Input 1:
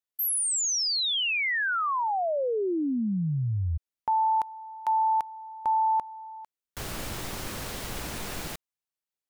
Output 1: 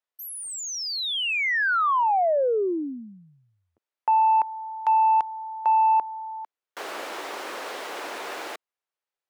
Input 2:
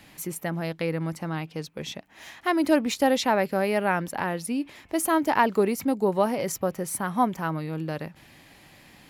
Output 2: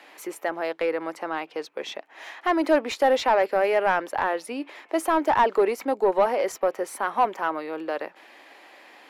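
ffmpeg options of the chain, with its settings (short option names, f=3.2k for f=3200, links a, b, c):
-filter_complex "[0:a]highpass=f=330:w=0.5412,highpass=f=330:w=1.3066,asplit=2[a][b];[b]highpass=f=720:p=1,volume=16dB,asoftclip=type=tanh:threshold=-8dB[c];[a][c]amix=inputs=2:normalize=0,lowpass=f=1.1k:p=1,volume=-6dB"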